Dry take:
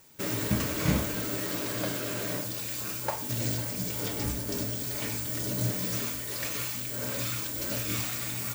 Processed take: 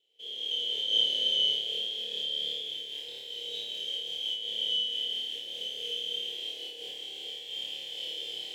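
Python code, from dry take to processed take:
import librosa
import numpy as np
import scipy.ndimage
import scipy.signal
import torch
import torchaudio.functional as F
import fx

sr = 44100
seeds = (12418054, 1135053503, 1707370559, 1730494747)

p1 = fx.band_shuffle(x, sr, order='2413')
p2 = np.maximum(p1, 0.0)
p3 = fx.double_bandpass(p2, sr, hz=1200.0, octaves=2.7)
p4 = p3 + fx.room_flutter(p3, sr, wall_m=4.7, rt60_s=1.2, dry=0)
p5 = fx.rev_gated(p4, sr, seeds[0], gate_ms=490, shape='rising', drr_db=-5.0)
y = fx.am_noise(p5, sr, seeds[1], hz=5.7, depth_pct=60)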